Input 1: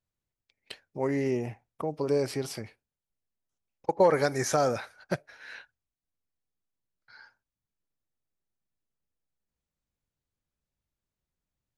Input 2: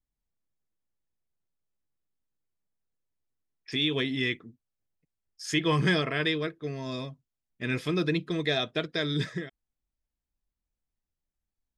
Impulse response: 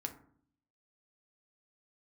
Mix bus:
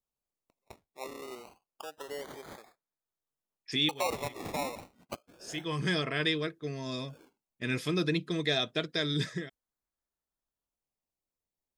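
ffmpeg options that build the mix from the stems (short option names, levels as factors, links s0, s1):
-filter_complex "[0:a]highpass=680,acrusher=samples=22:mix=1:aa=0.000001:lfo=1:lforange=13.2:lforate=0.28,volume=0.531,asplit=2[s0][s1];[1:a]agate=range=0.501:threshold=0.00501:ratio=16:detection=peak,bass=f=250:g=3,treble=f=4000:g=7,volume=0.75[s2];[s1]apad=whole_len=519416[s3];[s2][s3]sidechaincompress=threshold=0.002:ratio=4:attack=31:release=711[s4];[s0][s4]amix=inputs=2:normalize=0,lowshelf=f=86:g=-9.5"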